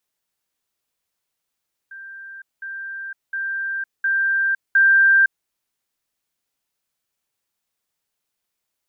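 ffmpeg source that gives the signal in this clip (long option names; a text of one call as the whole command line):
ffmpeg -f lavfi -i "aevalsrc='pow(10,(-34.5+6*floor(t/0.71))/20)*sin(2*PI*1580*t)*clip(min(mod(t,0.71),0.51-mod(t,0.71))/0.005,0,1)':duration=3.55:sample_rate=44100" out.wav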